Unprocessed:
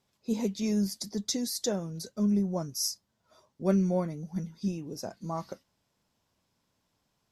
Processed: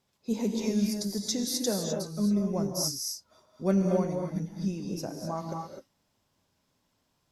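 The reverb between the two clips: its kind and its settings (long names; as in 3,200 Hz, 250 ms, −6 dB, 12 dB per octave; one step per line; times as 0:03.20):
reverb whose tail is shaped and stops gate 280 ms rising, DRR 2 dB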